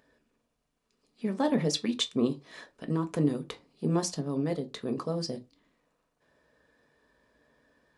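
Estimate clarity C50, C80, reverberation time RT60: 20.5 dB, 28.5 dB, non-exponential decay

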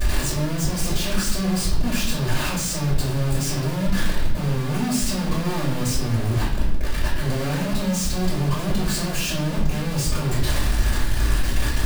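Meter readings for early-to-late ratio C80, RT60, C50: 8.0 dB, non-exponential decay, 4.0 dB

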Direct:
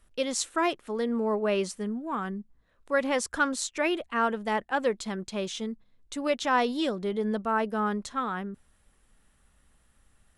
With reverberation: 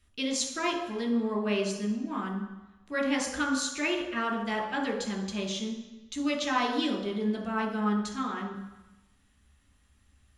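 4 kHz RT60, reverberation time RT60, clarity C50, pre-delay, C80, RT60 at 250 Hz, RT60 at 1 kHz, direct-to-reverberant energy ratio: 1.1 s, 1.0 s, 6.0 dB, 3 ms, 8.5 dB, 0.95 s, 1.1 s, 0.5 dB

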